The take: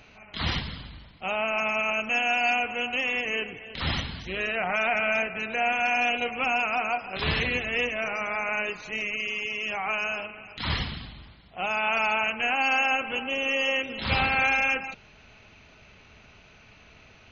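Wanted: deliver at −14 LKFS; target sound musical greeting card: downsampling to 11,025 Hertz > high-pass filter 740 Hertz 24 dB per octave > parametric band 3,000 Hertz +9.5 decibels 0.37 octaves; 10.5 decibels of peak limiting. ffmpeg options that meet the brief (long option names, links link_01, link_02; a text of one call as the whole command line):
ffmpeg -i in.wav -af "alimiter=limit=-23dB:level=0:latency=1,aresample=11025,aresample=44100,highpass=frequency=740:width=0.5412,highpass=frequency=740:width=1.3066,equalizer=frequency=3000:width_type=o:width=0.37:gain=9.5,volume=14.5dB" out.wav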